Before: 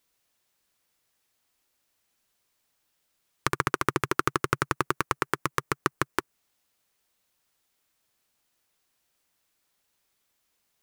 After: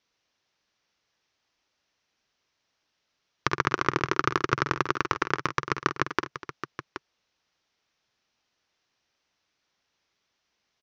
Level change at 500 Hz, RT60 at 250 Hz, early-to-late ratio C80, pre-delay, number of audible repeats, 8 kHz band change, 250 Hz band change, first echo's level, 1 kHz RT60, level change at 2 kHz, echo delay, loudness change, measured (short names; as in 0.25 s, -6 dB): +1.0 dB, none, none, none, 3, -5.0 dB, +1.0 dB, -11.5 dB, none, +2.0 dB, 49 ms, +1.5 dB